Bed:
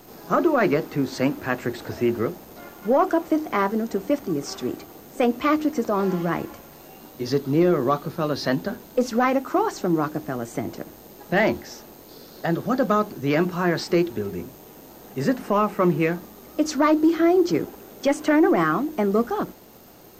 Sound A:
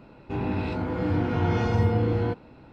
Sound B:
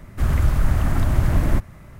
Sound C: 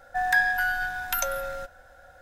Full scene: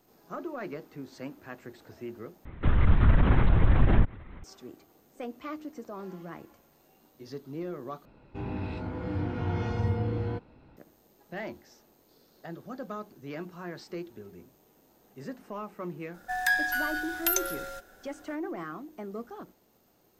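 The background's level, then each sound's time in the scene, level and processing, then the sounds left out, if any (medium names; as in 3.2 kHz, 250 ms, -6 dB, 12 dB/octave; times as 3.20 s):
bed -18 dB
2.45 s: replace with B -2.5 dB + LPC vocoder at 8 kHz whisper
8.05 s: replace with A -8 dB + bass shelf 63 Hz +9 dB
16.14 s: add C -7.5 dB + treble shelf 2.4 kHz +11 dB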